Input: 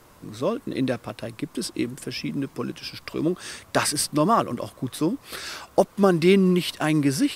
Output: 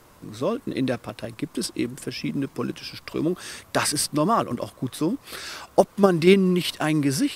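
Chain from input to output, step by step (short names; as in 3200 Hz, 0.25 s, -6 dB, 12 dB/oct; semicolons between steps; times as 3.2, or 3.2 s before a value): 3.26–3.78 bell 12000 Hz +6 dB 0.23 oct; in parallel at +1 dB: level quantiser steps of 15 dB; on the sum: gain -3.5 dB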